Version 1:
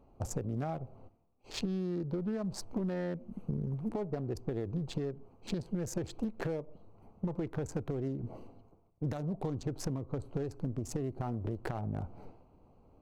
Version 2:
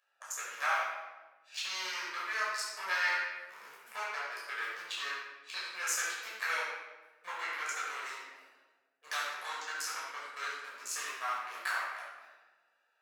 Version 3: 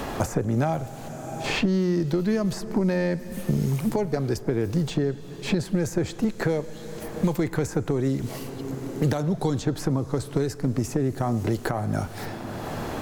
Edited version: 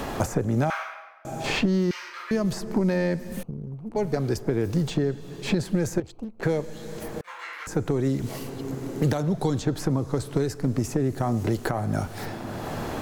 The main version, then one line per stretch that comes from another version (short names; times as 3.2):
3
0.7–1.25 from 2
1.91–2.31 from 2
3.43–3.96 from 1
6–6.43 from 1
7.21–7.67 from 2